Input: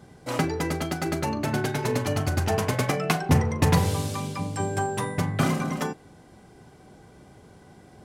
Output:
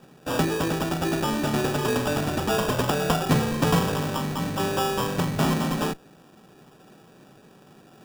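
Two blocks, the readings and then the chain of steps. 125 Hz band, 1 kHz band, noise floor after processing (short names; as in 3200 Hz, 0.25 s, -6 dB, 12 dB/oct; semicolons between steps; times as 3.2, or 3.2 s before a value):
-2.0 dB, +2.0 dB, -53 dBFS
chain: HPF 140 Hz 24 dB/oct; in parallel at -5.5 dB: Schmitt trigger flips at -36.5 dBFS; on the sum: sample-and-hold 21×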